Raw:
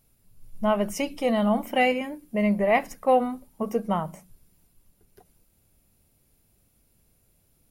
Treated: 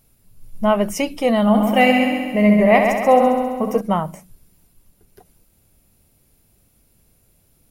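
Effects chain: 1.41–3.81 multi-head echo 67 ms, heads first and second, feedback 62%, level -8 dB; gain +6.5 dB

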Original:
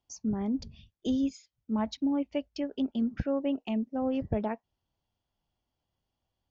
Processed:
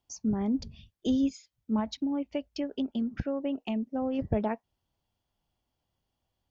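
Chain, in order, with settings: 1.79–4.19 compressor, threshold -29 dBFS, peak gain reduction 5.5 dB; gain +2 dB

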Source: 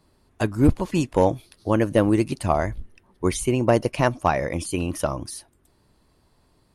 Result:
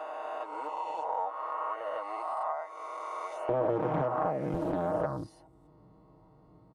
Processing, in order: spectral swells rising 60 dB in 2.24 s; HPF 810 Hz 24 dB/oct, from 3.49 s 140 Hz, from 4.54 s 47 Hz; comb 6.4 ms, depth 89%; compressor 2.5:1, threshold -33 dBFS, peak gain reduction 16 dB; polynomial smoothing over 65 samples; Doppler distortion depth 0.54 ms

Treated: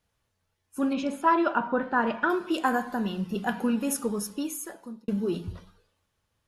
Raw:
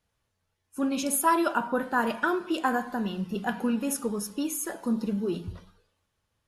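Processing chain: 0.93–2.3 LPF 2900 Hz 12 dB/oct; 4.21–5.08 fade out; gain +1 dB

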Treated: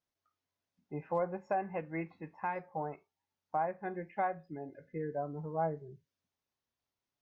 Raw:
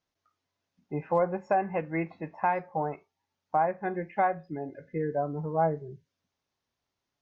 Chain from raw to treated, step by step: 2.01–2.56 bell 640 Hz -12.5 dB 0.32 oct; gain -7.5 dB

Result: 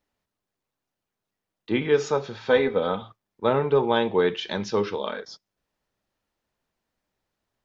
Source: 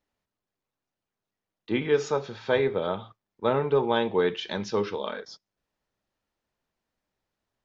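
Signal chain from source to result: 2.49–3.02 comb 4 ms, depth 58%; gain +2.5 dB

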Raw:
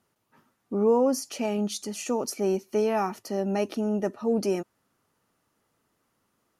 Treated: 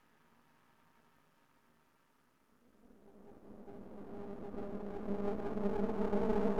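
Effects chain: Paulstretch 16×, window 0.50 s, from 0.35; half-wave rectifier; gain -3 dB

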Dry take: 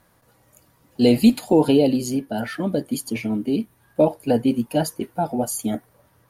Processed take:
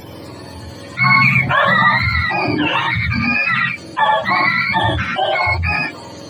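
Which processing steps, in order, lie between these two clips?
spectrum mirrored in octaves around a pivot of 730 Hz; non-linear reverb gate 0.13 s rising, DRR -0.5 dB; fast leveller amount 50%; gain +1.5 dB

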